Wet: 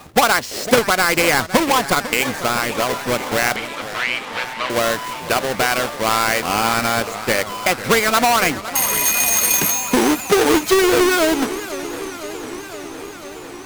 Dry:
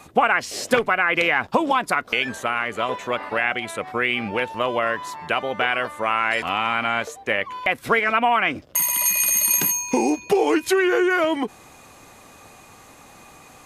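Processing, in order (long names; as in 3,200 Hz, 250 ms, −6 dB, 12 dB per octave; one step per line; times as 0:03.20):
each half-wave held at its own peak
0:03.56–0:04.70: Chebyshev band-pass filter 970–3,600 Hz, order 2
feedback echo with a swinging delay time 506 ms, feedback 75%, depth 210 cents, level −14 dB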